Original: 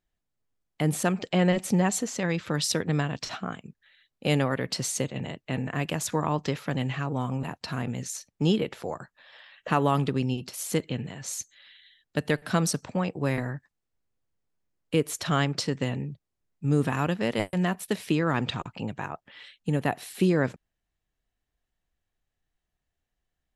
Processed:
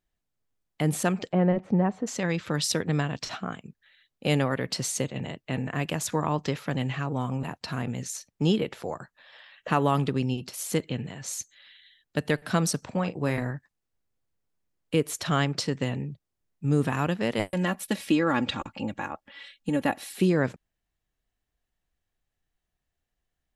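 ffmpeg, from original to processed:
ffmpeg -i in.wav -filter_complex "[0:a]asplit=3[link_01][link_02][link_03];[link_01]afade=type=out:start_time=1.31:duration=0.02[link_04];[link_02]lowpass=1200,afade=type=in:start_time=1.31:duration=0.02,afade=type=out:start_time=2.06:duration=0.02[link_05];[link_03]afade=type=in:start_time=2.06:duration=0.02[link_06];[link_04][link_05][link_06]amix=inputs=3:normalize=0,asettb=1/sr,asplit=3[link_07][link_08][link_09];[link_07]atrim=end=12.784[link_10];[link_08]atrim=start=12.78:end=13.51,asetpts=PTS-STARTPTS,afade=type=in:duration=0.004:curve=qsin,afade=type=out:start_time=0.726:duration=0.004:curve=qsin,asplit=2[link_11][link_12];[link_12]adelay=40,volume=-13dB[link_13];[link_11][link_13]amix=inputs=2:normalize=0,atrim=end_sample=32193[link_14];[link_09]atrim=start=13.506[link_15];[link_10][link_14]acrossfade=duration=0.004:curve1=hsin:curve2=qsin[link_16];[link_16][link_15]acrossfade=duration=0.004:curve1=qsin:curve2=hsin,asettb=1/sr,asplit=3[link_17][link_18][link_19];[link_17]atrim=end=17.514[link_20];[link_18]atrim=start=17.51:end=20.15,asetpts=PTS-STARTPTS,afade=type=in:duration=0.004:curve=qsin,afade=type=out:start_time=2.636:duration=0.004:curve=qsin,aecho=1:1:3.6:0.65,atrim=end_sample=116424[link_21];[link_19]atrim=start=20.146[link_22];[link_20][link_21]acrossfade=duration=0.004:curve1=hsin:curve2=qsin[link_23];[link_23][link_22]acrossfade=duration=0.004:curve1=qsin:curve2=hsin" out.wav

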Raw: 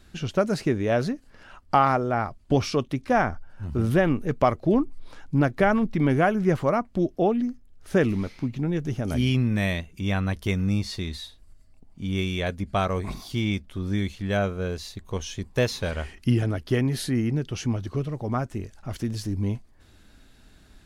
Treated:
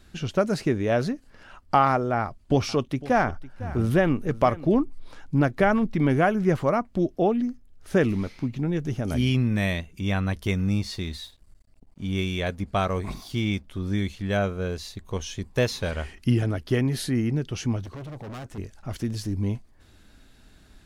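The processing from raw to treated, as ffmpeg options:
ffmpeg -i in.wav -filter_complex "[0:a]asettb=1/sr,asplit=3[link_01][link_02][link_03];[link_01]atrim=end=2.184[link_04];[link_02]atrim=start=2.18:end=4.75,asetpts=PTS-STARTPTS,afade=type=in:duration=0.004:curve=qsin,afade=type=out:start_time=2.566:duration=0.004:curve=qsin,aecho=1:1:505:0.133,atrim=end_sample=113337[link_05];[link_03]atrim=start=4.746[link_06];[link_04][link_05]acrossfade=duration=0.004:curve1=hsin:curve2=qsin[link_07];[link_07][link_06]acrossfade=duration=0.004:curve1=qsin:curve2=hsin,asettb=1/sr,asplit=3[link_08][link_09][link_10];[link_08]atrim=end=10.654[link_11];[link_09]atrim=start=10.65:end=13.65,asetpts=PTS-STARTPTS,afade=type=in:duration=0.004:curve=qsin,afade=type=out:start_time=2.996:duration=0.004:curve=qsin,aeval=exprs='sgn(val(0))*max(abs(val(0))-0.0015,0)':channel_layout=same[link_12];[link_10]atrim=start=13.646[link_13];[link_11][link_12]acrossfade=duration=0.004:curve1=hsin:curve2=qsin[link_14];[link_14][link_13]acrossfade=duration=0.004:curve1=qsin:curve2=hsin,asettb=1/sr,asplit=3[link_15][link_16][link_17];[link_15]atrim=end=17.844[link_18];[link_16]atrim=start=17.84:end=18.58,asetpts=PTS-STARTPTS,afade=type=in:duration=0.004:curve=qsin,afade=type=out:start_time=0.736:duration=0.004:curve=qsin,volume=35.5dB,asoftclip=hard,volume=-35.5dB[link_19];[link_17]atrim=start=18.576[link_20];[link_18][link_19]acrossfade=duration=0.004:curve1=hsin:curve2=qsin[link_21];[link_21][link_20]acrossfade=duration=0.004:curve1=qsin:curve2=hsin" out.wav

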